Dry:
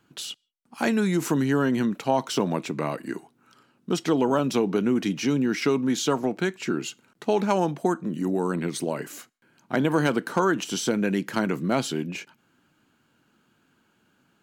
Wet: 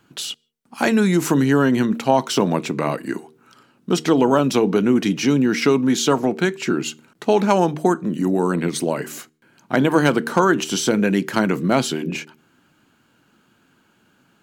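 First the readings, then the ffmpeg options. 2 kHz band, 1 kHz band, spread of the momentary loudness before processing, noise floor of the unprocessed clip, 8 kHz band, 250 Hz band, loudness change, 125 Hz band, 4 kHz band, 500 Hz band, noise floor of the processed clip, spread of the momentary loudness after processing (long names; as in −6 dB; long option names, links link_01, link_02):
+6.5 dB, +6.5 dB, 11 LU, −67 dBFS, +6.5 dB, +6.0 dB, +6.0 dB, +6.0 dB, +6.5 dB, +6.5 dB, −61 dBFS, 11 LU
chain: -af "bandreject=frequency=77.3:width_type=h:width=4,bandreject=frequency=154.6:width_type=h:width=4,bandreject=frequency=231.9:width_type=h:width=4,bandreject=frequency=309.2:width_type=h:width=4,bandreject=frequency=386.5:width_type=h:width=4,bandreject=frequency=463.8:width_type=h:width=4,volume=6.5dB"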